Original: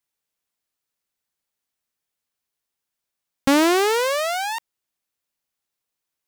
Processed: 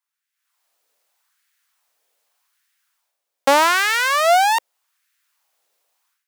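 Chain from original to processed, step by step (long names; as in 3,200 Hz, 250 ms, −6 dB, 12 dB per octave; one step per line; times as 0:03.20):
low-shelf EQ 230 Hz +5 dB
automatic gain control gain up to 16 dB
auto-filter high-pass sine 0.83 Hz 500–1,700 Hz
level −3.5 dB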